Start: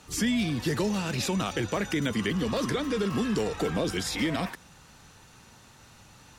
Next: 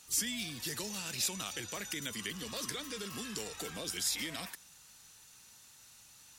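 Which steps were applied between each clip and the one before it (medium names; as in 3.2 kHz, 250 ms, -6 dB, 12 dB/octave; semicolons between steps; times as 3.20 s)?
pre-emphasis filter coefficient 0.9; trim +2.5 dB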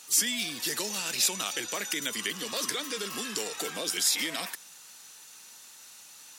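high-pass 280 Hz 12 dB/octave; trim +8 dB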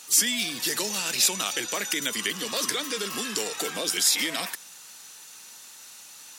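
de-hum 51.24 Hz, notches 3; trim +4 dB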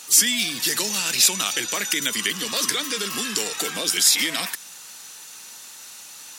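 dynamic bell 560 Hz, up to -5 dB, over -47 dBFS, Q 0.73; trim +5 dB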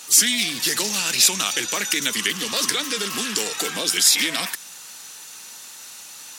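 loudspeaker Doppler distortion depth 0.11 ms; trim +1.5 dB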